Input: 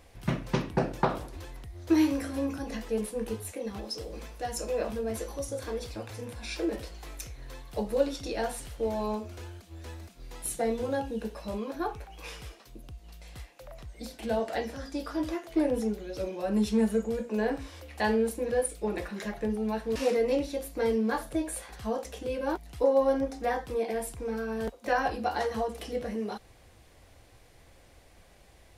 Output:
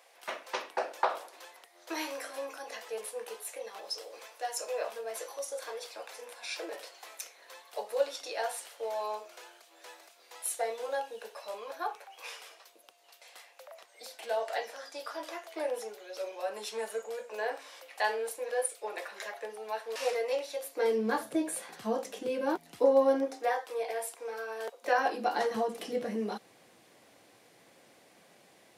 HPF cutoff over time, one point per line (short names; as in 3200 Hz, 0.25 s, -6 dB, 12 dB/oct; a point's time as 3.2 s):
HPF 24 dB/oct
20.57 s 540 Hz
21.22 s 180 Hz
22.99 s 180 Hz
23.57 s 500 Hz
24.63 s 500 Hz
25.51 s 170 Hz